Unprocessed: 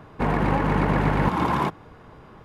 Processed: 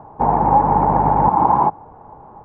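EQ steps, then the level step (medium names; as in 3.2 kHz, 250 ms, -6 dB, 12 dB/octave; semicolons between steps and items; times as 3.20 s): resonant low-pass 850 Hz, resonance Q 7; 0.0 dB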